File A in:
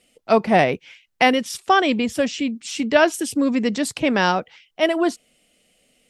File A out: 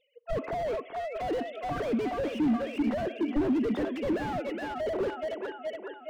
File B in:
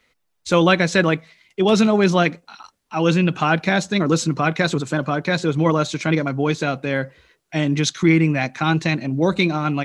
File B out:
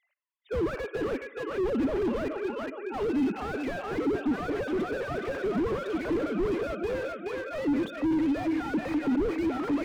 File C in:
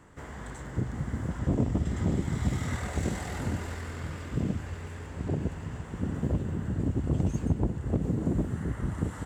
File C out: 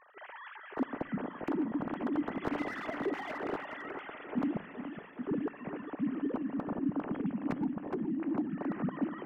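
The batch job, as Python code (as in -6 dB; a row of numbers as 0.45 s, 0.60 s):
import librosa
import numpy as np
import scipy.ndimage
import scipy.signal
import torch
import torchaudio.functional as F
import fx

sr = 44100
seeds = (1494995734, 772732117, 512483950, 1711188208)

p1 = fx.sine_speech(x, sr)
p2 = fx.rider(p1, sr, range_db=4, speed_s=0.5)
p3 = p2 + fx.echo_feedback(p2, sr, ms=419, feedback_pct=58, wet_db=-10, dry=0)
p4 = fx.room_shoebox(p3, sr, seeds[0], volume_m3=2000.0, walls='furnished', distance_m=0.39)
p5 = fx.slew_limit(p4, sr, full_power_hz=40.0)
y = F.gain(torch.from_numpy(p5), -5.5).numpy()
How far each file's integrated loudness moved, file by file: -11.0 LU, -10.5 LU, -4.5 LU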